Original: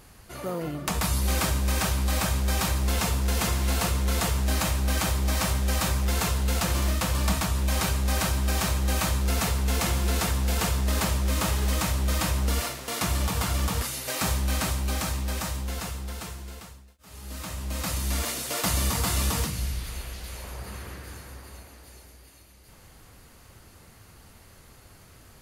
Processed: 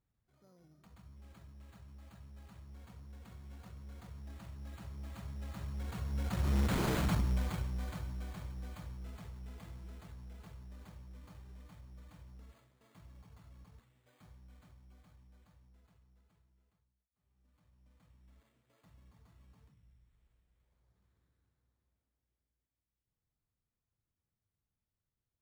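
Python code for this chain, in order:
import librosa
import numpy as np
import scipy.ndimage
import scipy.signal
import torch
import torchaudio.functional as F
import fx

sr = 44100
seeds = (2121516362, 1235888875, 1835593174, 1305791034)

y = fx.doppler_pass(x, sr, speed_mps=16, closest_m=1.6, pass_at_s=6.86)
y = fx.low_shelf(y, sr, hz=64.0, db=8.5)
y = 10.0 ** (-29.5 / 20.0) * (np.abs((y / 10.0 ** (-29.5 / 20.0) + 3.0) % 4.0 - 2.0) - 1.0)
y = fx.graphic_eq(y, sr, hz=(125, 250, 4000), db=(8, 3, 3))
y = fx.cheby_harmonics(y, sr, harmonics=(3,), levels_db=(-19,), full_scale_db=-23.0)
y = np.repeat(scipy.signal.resample_poly(y, 1, 8), 8)[:len(y)]
y = y * librosa.db_to_amplitude(3.5)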